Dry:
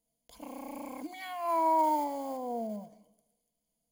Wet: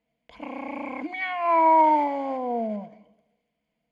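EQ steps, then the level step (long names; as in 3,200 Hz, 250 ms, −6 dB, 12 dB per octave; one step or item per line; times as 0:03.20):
high-pass filter 53 Hz
low-pass with resonance 2,300 Hz, resonance Q 2.8
+7.5 dB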